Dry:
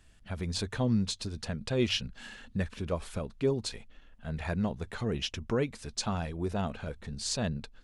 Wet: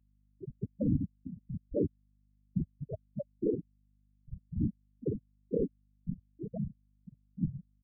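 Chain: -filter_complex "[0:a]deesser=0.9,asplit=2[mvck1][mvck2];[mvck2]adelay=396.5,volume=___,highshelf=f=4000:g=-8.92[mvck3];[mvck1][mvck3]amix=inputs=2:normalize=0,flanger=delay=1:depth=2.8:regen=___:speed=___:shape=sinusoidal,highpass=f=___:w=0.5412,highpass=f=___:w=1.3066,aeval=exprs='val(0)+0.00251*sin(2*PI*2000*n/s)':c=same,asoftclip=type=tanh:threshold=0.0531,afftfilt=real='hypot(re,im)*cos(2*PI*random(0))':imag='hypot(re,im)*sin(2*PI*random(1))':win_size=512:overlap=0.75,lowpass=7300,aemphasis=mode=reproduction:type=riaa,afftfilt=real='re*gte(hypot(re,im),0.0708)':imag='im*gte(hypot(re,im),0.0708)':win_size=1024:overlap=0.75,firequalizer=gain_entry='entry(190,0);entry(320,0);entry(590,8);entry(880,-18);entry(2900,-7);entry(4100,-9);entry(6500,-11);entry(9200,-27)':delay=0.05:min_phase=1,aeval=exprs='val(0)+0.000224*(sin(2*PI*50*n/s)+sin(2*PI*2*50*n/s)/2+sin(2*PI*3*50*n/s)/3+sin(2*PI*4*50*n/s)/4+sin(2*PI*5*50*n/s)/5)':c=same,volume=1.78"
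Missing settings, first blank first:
0.178, -70, 0.75, 190, 190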